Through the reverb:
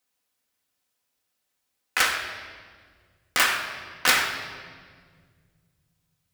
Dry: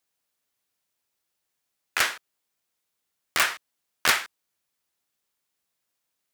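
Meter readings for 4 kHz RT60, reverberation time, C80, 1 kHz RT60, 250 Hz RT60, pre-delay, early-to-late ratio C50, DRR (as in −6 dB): 1.4 s, 1.8 s, 7.0 dB, 1.6 s, 2.8 s, 4 ms, 5.5 dB, 0.5 dB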